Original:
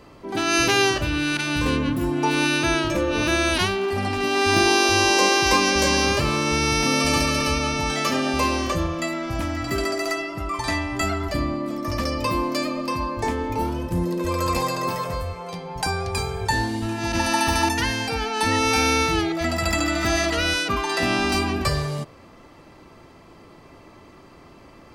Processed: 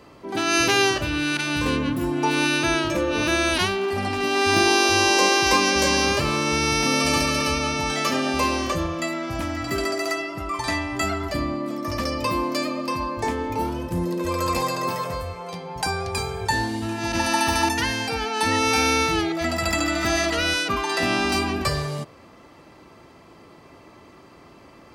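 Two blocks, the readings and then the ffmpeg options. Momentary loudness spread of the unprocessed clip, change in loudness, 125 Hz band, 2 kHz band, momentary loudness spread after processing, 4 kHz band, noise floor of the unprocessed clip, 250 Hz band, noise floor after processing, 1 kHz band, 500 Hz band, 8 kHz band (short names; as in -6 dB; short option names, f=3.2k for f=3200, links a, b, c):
9 LU, -0.5 dB, -2.5 dB, 0.0 dB, 10 LU, 0.0 dB, -48 dBFS, -1.0 dB, -49 dBFS, 0.0 dB, -0.5 dB, 0.0 dB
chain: -af "highpass=43,lowshelf=f=140:g=-4"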